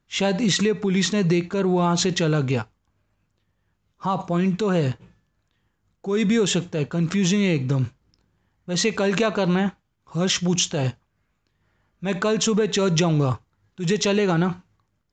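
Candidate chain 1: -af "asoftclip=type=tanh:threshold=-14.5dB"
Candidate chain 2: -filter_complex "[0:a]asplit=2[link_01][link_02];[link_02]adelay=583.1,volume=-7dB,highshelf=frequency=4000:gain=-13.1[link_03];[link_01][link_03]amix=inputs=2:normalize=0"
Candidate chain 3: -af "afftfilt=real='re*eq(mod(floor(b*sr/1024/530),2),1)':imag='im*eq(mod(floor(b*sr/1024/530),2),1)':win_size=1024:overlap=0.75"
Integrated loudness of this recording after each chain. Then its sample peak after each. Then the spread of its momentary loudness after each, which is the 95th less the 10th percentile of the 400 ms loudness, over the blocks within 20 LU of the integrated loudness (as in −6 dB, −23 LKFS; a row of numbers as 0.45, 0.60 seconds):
−24.0, −22.5, −30.0 LKFS; −14.5, −5.5, −10.0 dBFS; 8, 11, 12 LU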